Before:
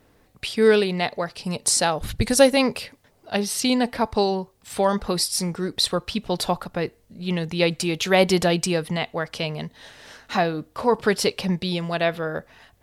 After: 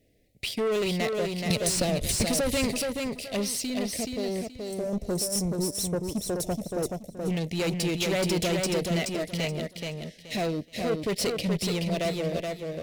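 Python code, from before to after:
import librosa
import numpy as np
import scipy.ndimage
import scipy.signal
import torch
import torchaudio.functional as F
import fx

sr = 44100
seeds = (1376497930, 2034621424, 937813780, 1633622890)

p1 = fx.fuzz(x, sr, gain_db=25.0, gate_db=-33.0)
p2 = x + F.gain(torch.from_numpy(p1), -4.0).numpy()
p3 = scipy.signal.sosfilt(scipy.signal.cheby1(3, 1.0, [650.0, 2000.0], 'bandstop', fs=sr, output='sos'), p2)
p4 = fx.level_steps(p3, sr, step_db=11, at=(3.5, 4.93))
p5 = fx.spec_box(p4, sr, start_s=4.42, length_s=2.89, low_hz=1300.0, high_hz=5200.0, gain_db=-16)
p6 = 10.0 ** (-16.5 / 20.0) * np.tanh(p5 / 10.0 ** (-16.5 / 20.0))
p7 = p6 + fx.echo_feedback(p6, sr, ms=426, feedback_pct=25, wet_db=-4, dry=0)
p8 = fx.band_squash(p7, sr, depth_pct=100, at=(1.5, 2.7))
y = F.gain(torch.from_numpy(p8), -7.0).numpy()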